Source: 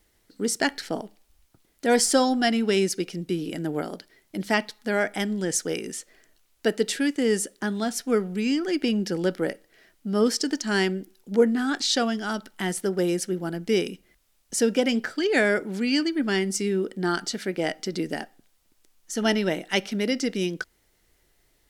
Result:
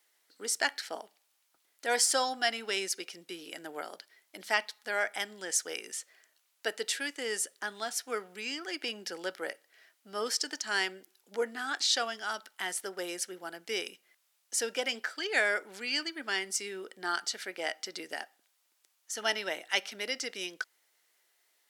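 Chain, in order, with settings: HPF 770 Hz 12 dB/oct; gain -3 dB

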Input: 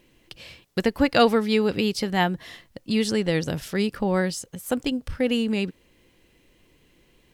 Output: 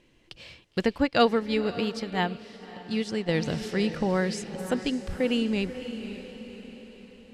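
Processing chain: LPF 7500 Hz 12 dB/oct; diffused feedback echo 0.551 s, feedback 50%, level -10.5 dB; 0.98–3.29 upward expander 1.5:1, over -34 dBFS; gain -2.5 dB

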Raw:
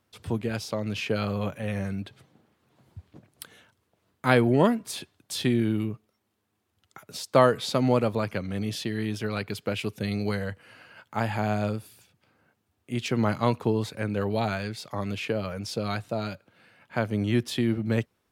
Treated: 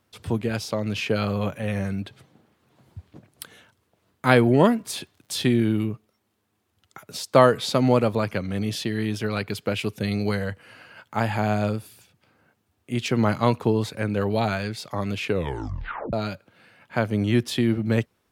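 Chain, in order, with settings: 4.78–5.55 crackle 72/s -51 dBFS; 15.26 tape stop 0.87 s; gain +3.5 dB

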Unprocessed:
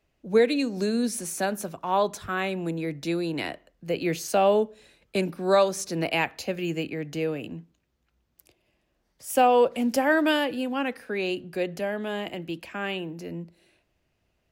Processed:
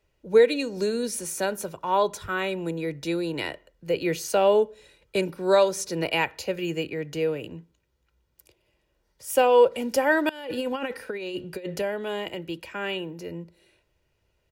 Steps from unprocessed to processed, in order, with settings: comb 2.1 ms, depth 50%; 10.29–11.82 negative-ratio compressor -30 dBFS, ratio -0.5

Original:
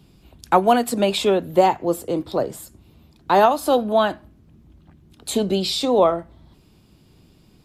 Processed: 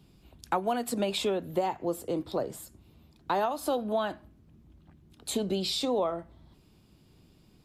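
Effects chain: compressor 4:1, threshold -19 dBFS, peak gain reduction 8.5 dB; gain -6.5 dB

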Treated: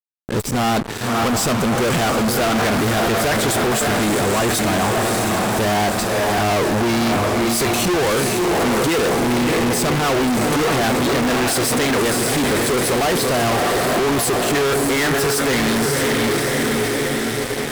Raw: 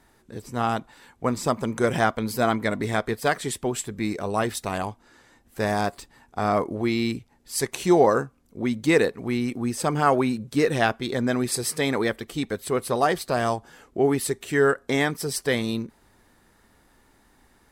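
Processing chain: on a send: diffused feedback echo 0.602 s, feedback 58%, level -8 dB; on the sum: fuzz box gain 44 dB, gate -45 dBFS; limiter -15.5 dBFS, peak gain reduction 5 dB

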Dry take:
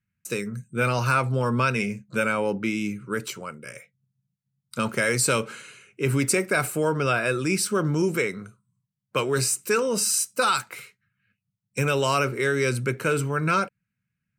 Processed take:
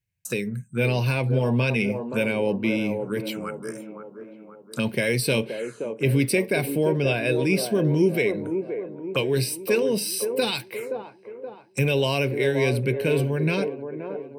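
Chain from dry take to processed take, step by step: envelope phaser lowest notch 220 Hz, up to 1300 Hz, full sweep at -27 dBFS; on a send: band-limited delay 0.524 s, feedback 49%, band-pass 550 Hz, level -5 dB; on the sum: gain +3 dB

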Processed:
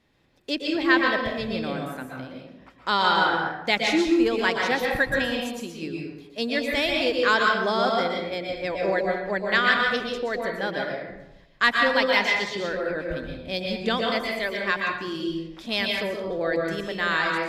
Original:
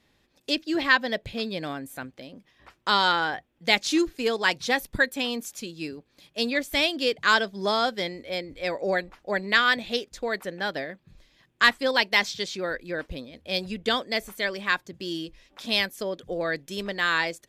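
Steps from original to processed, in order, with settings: high shelf 3700 Hz -7.5 dB; reverb RT60 0.90 s, pre-delay 0.113 s, DRR 0 dB

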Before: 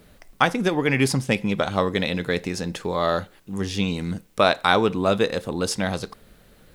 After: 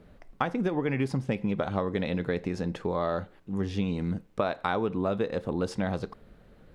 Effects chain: LPF 1100 Hz 6 dB/oct; compressor, threshold -23 dBFS, peak gain reduction 8.5 dB; gain -1 dB

